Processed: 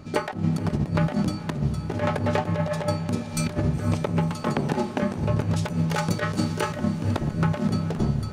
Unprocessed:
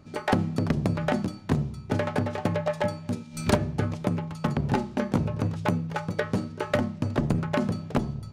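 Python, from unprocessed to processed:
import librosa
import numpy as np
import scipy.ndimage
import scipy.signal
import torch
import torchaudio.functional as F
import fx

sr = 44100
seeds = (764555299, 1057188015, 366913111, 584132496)

y = fx.highpass(x, sr, hz=230.0, slope=12, at=(4.31, 5.03))
y = fx.high_shelf(y, sr, hz=3500.0, db=11.5, at=(5.56, 6.76))
y = fx.over_compress(y, sr, threshold_db=-29.0, ratio=-0.5)
y = fx.echo_diffused(y, sr, ms=494, feedback_pct=65, wet_db=-14)
y = y * 10.0 ** (5.5 / 20.0)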